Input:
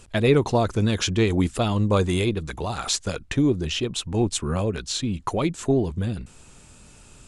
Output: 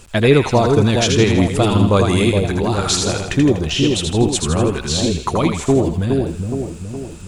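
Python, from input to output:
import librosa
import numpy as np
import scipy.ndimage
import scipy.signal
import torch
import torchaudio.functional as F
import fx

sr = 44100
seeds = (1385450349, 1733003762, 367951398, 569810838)

p1 = fx.dmg_crackle(x, sr, seeds[0], per_s=140.0, level_db=-45.0)
p2 = p1 + fx.echo_split(p1, sr, split_hz=800.0, low_ms=417, high_ms=81, feedback_pct=52, wet_db=-4.0, dry=0)
y = p2 * 10.0 ** (6.0 / 20.0)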